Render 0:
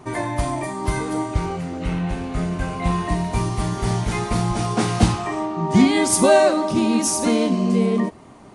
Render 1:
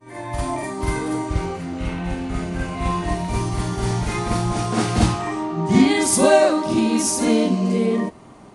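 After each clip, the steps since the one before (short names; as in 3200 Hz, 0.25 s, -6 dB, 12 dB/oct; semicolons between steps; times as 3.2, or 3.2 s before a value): opening faded in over 0.51 s; reverse echo 49 ms -4.5 dB; gain -1 dB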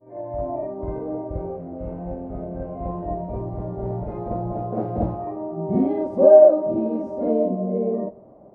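synth low-pass 590 Hz, resonance Q 5; on a send at -20.5 dB: reverb RT60 0.55 s, pre-delay 5 ms; on the sum: gain -8 dB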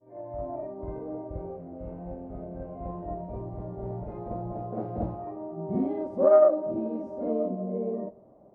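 self-modulated delay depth 0.092 ms; gain -7.5 dB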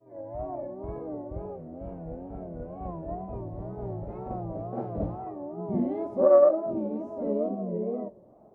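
wow and flutter 130 cents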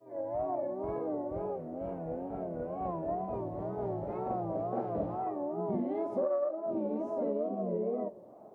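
HPF 350 Hz 6 dB/oct; compressor 10:1, threshold -34 dBFS, peak gain reduction 18.5 dB; gain +5 dB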